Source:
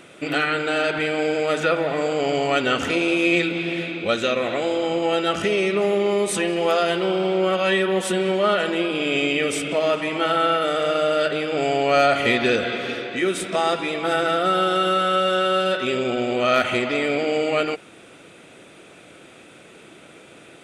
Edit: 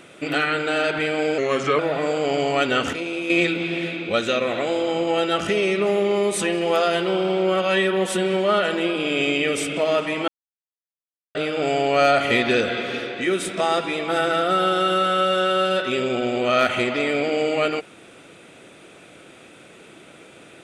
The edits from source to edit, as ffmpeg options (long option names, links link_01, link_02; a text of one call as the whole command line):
ffmpeg -i in.wav -filter_complex "[0:a]asplit=7[link_01][link_02][link_03][link_04][link_05][link_06][link_07];[link_01]atrim=end=1.384[link_08];[link_02]atrim=start=1.38:end=1.74,asetpts=PTS-STARTPTS,asetrate=38808,aresample=44100[link_09];[link_03]atrim=start=1.736:end=2.882[link_10];[link_04]atrim=start=2.878:end=3.252,asetpts=PTS-STARTPTS,volume=-7dB[link_11];[link_05]atrim=start=3.248:end=10.23,asetpts=PTS-STARTPTS,afade=type=out:start_time=6.978:duration=0.004:curve=hsin[link_12];[link_06]atrim=start=10.23:end=11.3,asetpts=PTS-STARTPTS,volume=0[link_13];[link_07]atrim=start=11.3,asetpts=PTS-STARTPTS,afade=type=in:duration=0.004:curve=hsin[link_14];[link_08][link_09]acrossfade=duration=0.004:curve1=hsin:curve2=hsin[link_15];[link_15][link_10]acrossfade=duration=0.004:curve1=hsin:curve2=hsin[link_16];[link_16][link_11]acrossfade=duration=0.004:curve1=hsin:curve2=hsin[link_17];[link_12][link_13][link_14]concat=n=3:v=0:a=1[link_18];[link_17][link_18]acrossfade=duration=0.004:curve1=hsin:curve2=hsin" out.wav